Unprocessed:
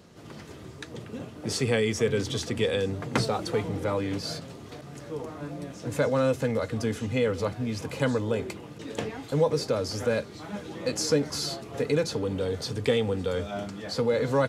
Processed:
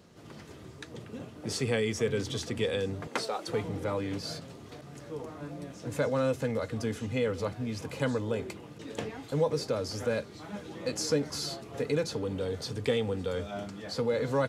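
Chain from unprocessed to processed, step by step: 3.07–3.48 HPF 410 Hz 12 dB/oct; gain -4 dB

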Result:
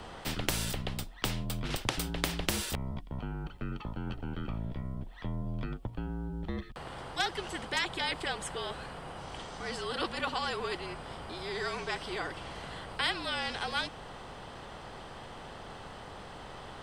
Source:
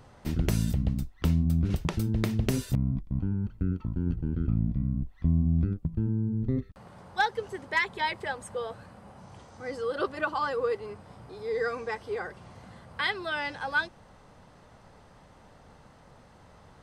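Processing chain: frequency shift -49 Hz; thirty-one-band EQ 800 Hz +4 dB, 3150 Hz +7 dB, 6300 Hz -5 dB, 12500 Hz -10 dB; spectral compressor 2:1; gain +1.5 dB

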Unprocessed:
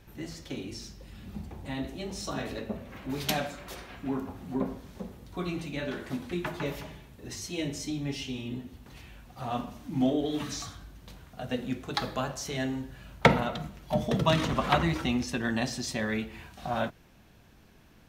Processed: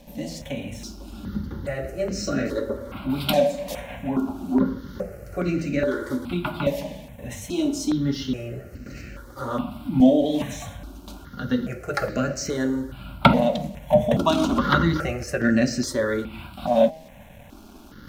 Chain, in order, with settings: in parallel at -0.5 dB: compressor, threshold -41 dBFS, peak gain reduction 25 dB; on the sum: bell 260 Hz +6.5 dB 1.1 oct; de-hum 159.4 Hz, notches 5; small resonant body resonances 570/1400 Hz, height 12 dB, ringing for 45 ms; crossover distortion -55.5 dBFS; reverse; upward compressor, threshold -39 dBFS; reverse; step phaser 2.4 Hz 370–3400 Hz; gain +5 dB

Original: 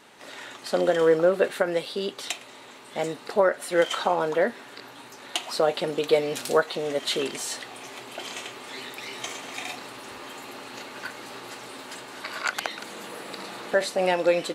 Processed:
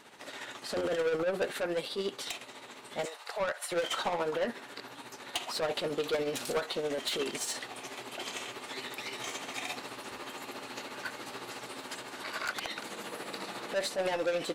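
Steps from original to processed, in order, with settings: 3.05–3.72 HPF 620 Hz 24 dB/oct; soft clip -25 dBFS, distortion -6 dB; tremolo 14 Hz, depth 50%

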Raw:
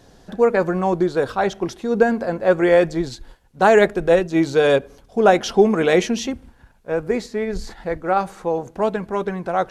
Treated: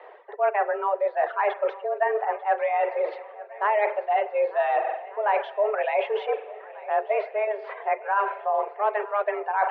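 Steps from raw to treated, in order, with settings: spring tank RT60 1.3 s, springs 43 ms, chirp 40 ms, DRR 8.5 dB; reverse; compressor 10:1, threshold -26 dBFS, peak gain reduction 18 dB; reverse; short-mantissa float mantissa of 4-bit; reverb removal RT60 1.5 s; on a send: swung echo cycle 1.489 s, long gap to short 1.5:1, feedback 50%, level -19.5 dB; on the sum: mistuned SSB +210 Hz 220–2500 Hz; gain +7 dB

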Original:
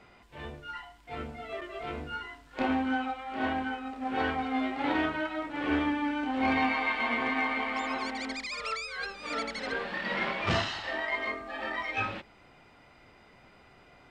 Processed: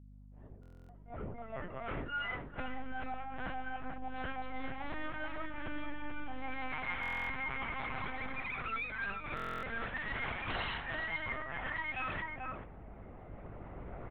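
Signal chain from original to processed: opening faded in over 4.19 s; recorder AGC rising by 5.1 dB/s; LPC vocoder at 8 kHz pitch kept; dynamic EQ 1400 Hz, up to +4 dB, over -44 dBFS, Q 0.84; on a send: echo 0.437 s -10 dB; on the sum: low-pass opened by the level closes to 670 Hz, open at -21.5 dBFS; bell 690 Hz -3 dB 2 oct; reverse; compressor 4:1, threshold -42 dBFS, peak gain reduction 17.5 dB; reverse; hum 50 Hz, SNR 15 dB; stuck buffer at 0.61/7.01/9.35, samples 1024, times 11; gain +4.5 dB

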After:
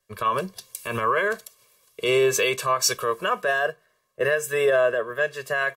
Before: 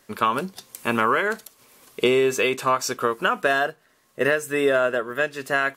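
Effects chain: comb 1.8 ms, depth 87%; limiter -13.5 dBFS, peak gain reduction 10 dB; three-band expander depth 70%

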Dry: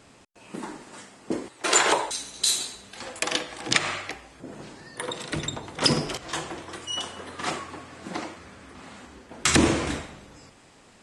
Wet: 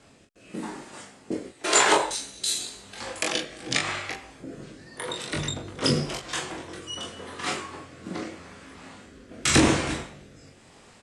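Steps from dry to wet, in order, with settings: rotary speaker horn 0.9 Hz; early reflections 22 ms -3.5 dB, 41 ms -6 dB

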